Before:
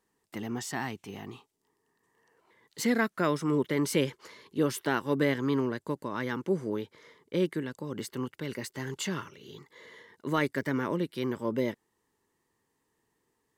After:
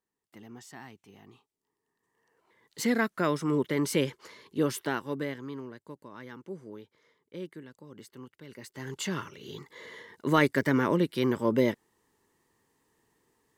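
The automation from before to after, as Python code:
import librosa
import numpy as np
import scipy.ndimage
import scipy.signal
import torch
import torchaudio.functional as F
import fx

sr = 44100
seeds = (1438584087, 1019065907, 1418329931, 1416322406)

y = fx.gain(x, sr, db=fx.line((1.17, -12.5), (2.84, 0.0), (4.76, 0.0), (5.54, -12.0), (8.47, -12.0), (8.88, -2.0), (9.52, 5.0)))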